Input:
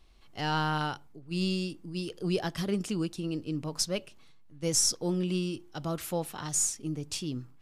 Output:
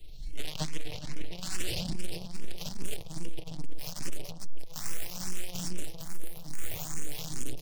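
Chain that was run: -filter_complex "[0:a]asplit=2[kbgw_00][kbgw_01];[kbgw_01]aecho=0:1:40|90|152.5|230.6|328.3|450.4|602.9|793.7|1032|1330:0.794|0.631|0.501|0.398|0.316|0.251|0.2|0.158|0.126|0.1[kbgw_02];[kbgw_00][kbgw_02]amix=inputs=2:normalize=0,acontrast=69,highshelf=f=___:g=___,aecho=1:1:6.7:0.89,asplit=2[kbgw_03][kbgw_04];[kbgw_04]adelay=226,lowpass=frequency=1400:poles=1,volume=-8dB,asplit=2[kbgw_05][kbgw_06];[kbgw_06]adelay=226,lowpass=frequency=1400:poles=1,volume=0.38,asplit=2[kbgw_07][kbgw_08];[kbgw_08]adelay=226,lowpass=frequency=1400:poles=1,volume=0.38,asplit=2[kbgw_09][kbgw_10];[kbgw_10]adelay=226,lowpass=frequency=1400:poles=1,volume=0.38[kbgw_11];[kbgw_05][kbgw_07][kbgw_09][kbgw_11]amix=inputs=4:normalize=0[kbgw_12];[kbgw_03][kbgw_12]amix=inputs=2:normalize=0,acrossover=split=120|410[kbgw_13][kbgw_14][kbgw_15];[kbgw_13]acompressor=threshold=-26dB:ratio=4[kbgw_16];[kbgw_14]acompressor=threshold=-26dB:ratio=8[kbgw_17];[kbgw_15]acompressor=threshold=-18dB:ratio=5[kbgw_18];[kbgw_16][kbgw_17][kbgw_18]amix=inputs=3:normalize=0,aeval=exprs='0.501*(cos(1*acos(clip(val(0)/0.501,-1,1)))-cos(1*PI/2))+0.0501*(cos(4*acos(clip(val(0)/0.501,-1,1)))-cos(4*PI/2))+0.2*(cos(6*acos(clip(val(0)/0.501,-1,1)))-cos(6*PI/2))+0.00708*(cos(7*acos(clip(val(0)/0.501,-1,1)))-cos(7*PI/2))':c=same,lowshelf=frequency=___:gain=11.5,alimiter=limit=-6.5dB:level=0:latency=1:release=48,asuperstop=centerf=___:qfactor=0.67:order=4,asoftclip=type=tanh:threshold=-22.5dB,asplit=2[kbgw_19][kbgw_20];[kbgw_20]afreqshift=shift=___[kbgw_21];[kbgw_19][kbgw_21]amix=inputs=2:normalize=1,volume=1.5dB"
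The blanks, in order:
9200, 8.5, 140, 1200, 2.4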